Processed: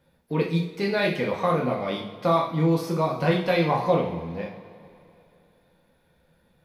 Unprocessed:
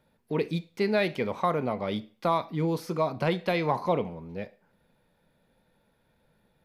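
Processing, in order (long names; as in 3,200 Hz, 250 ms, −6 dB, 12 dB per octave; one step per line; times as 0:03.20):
coupled-rooms reverb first 0.46 s, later 2.8 s, from −18 dB, DRR −2 dB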